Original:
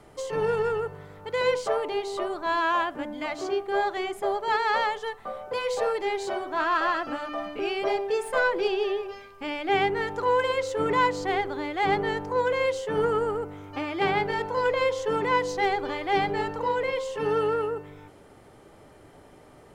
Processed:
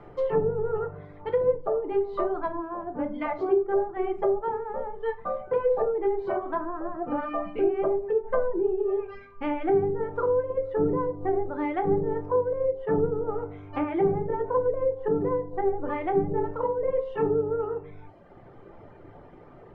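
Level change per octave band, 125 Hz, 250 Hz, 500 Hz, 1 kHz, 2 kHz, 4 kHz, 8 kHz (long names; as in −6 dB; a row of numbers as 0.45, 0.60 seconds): +3.5 dB, +3.5 dB, +1.5 dB, −5.5 dB, −13.5 dB, below −20 dB, below −35 dB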